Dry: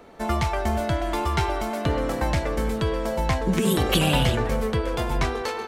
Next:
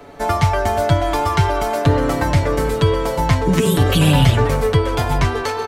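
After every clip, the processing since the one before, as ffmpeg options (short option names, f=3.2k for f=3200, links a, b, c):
-filter_complex "[0:a]equalizer=f=93:t=o:w=0.24:g=13.5,aecho=1:1:7:0.75,acrossover=split=210[a][b];[b]alimiter=limit=-15dB:level=0:latency=1:release=169[c];[a][c]amix=inputs=2:normalize=0,volume=6dB"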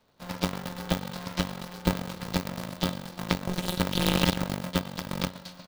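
-af "aeval=exprs='0.891*(cos(1*acos(clip(val(0)/0.891,-1,1)))-cos(1*PI/2))+0.398*(cos(2*acos(clip(val(0)/0.891,-1,1)))-cos(2*PI/2))+0.282*(cos(3*acos(clip(val(0)/0.891,-1,1)))-cos(3*PI/2))+0.0178*(cos(5*acos(clip(val(0)/0.891,-1,1)))-cos(5*PI/2))':c=same,equalizer=f=125:t=o:w=1:g=-5,equalizer=f=250:t=o:w=1:g=-5,equalizer=f=500:t=o:w=1:g=-8,equalizer=f=1k:t=o:w=1:g=-5,equalizer=f=2k:t=o:w=1:g=-9,equalizer=f=4k:t=o:w=1:g=8,equalizer=f=8k:t=o:w=1:g=-6,aeval=exprs='val(0)*sgn(sin(2*PI*180*n/s))':c=same,volume=-4dB"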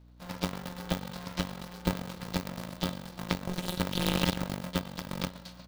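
-af "aeval=exprs='val(0)+0.00316*(sin(2*PI*60*n/s)+sin(2*PI*2*60*n/s)/2+sin(2*PI*3*60*n/s)/3+sin(2*PI*4*60*n/s)/4+sin(2*PI*5*60*n/s)/5)':c=same,volume=-4dB"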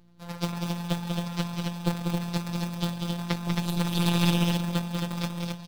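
-filter_complex "[0:a]afftfilt=real='hypot(re,im)*cos(PI*b)':imag='0':win_size=1024:overlap=0.75,asplit=2[a][b];[b]aecho=0:1:192.4|268.2:0.562|0.631[c];[a][c]amix=inputs=2:normalize=0,volume=4dB"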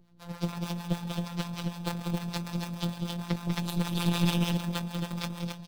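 -filter_complex "[0:a]acrossover=split=600[a][b];[a]aeval=exprs='val(0)*(1-0.7/2+0.7/2*cos(2*PI*6.6*n/s))':c=same[c];[b]aeval=exprs='val(0)*(1-0.7/2-0.7/2*cos(2*PI*6.6*n/s))':c=same[d];[c][d]amix=inputs=2:normalize=0"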